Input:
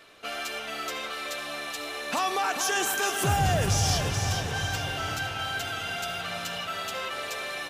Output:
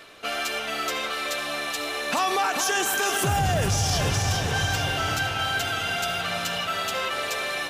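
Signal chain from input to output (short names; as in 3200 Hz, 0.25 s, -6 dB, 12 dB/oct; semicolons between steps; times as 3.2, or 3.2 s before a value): limiter -20.5 dBFS, peak gain reduction 6 dB; reverse; upward compressor, threshold -43 dBFS; reverse; gain +5.5 dB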